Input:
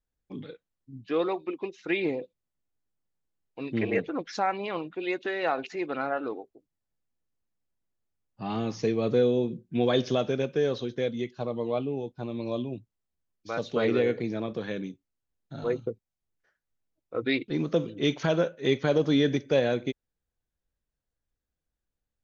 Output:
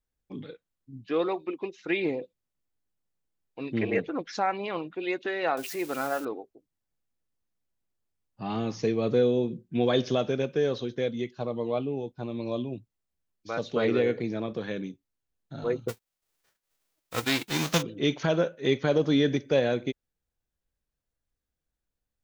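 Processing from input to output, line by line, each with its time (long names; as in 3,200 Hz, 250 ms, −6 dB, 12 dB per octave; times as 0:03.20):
0:05.57–0:06.25: spike at every zero crossing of −31 dBFS
0:15.88–0:17.81: spectral envelope flattened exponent 0.3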